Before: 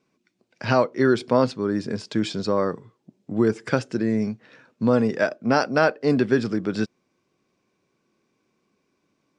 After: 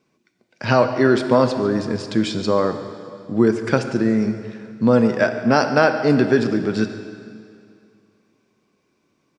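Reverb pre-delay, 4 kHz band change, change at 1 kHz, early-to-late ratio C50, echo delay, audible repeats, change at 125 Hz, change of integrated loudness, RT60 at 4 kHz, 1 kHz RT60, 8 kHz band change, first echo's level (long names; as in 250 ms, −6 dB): 5 ms, +4.0 dB, +4.5 dB, 8.5 dB, 142 ms, 1, +4.5 dB, +4.0 dB, 2.2 s, 2.4 s, +4.0 dB, −17.0 dB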